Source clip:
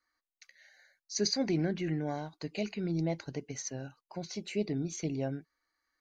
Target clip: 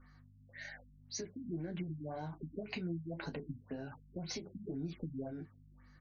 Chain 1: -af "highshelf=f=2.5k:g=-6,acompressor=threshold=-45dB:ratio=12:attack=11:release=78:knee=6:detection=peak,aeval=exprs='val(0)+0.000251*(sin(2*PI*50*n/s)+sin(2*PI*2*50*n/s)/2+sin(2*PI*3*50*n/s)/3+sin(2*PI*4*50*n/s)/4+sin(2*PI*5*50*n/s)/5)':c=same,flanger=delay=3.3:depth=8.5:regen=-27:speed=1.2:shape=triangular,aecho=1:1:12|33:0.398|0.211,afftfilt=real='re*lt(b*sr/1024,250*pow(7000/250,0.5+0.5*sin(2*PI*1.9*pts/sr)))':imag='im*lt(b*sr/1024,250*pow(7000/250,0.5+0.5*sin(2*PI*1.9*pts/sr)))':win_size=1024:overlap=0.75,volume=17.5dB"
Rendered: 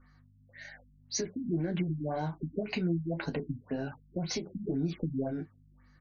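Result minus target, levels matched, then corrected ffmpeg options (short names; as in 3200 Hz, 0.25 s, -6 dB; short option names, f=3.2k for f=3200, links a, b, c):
compressor: peak gain reduction -9 dB
-af "highshelf=f=2.5k:g=-6,acompressor=threshold=-55dB:ratio=12:attack=11:release=78:knee=6:detection=peak,aeval=exprs='val(0)+0.000251*(sin(2*PI*50*n/s)+sin(2*PI*2*50*n/s)/2+sin(2*PI*3*50*n/s)/3+sin(2*PI*4*50*n/s)/4+sin(2*PI*5*50*n/s)/5)':c=same,flanger=delay=3.3:depth=8.5:regen=-27:speed=1.2:shape=triangular,aecho=1:1:12|33:0.398|0.211,afftfilt=real='re*lt(b*sr/1024,250*pow(7000/250,0.5+0.5*sin(2*PI*1.9*pts/sr)))':imag='im*lt(b*sr/1024,250*pow(7000/250,0.5+0.5*sin(2*PI*1.9*pts/sr)))':win_size=1024:overlap=0.75,volume=17.5dB"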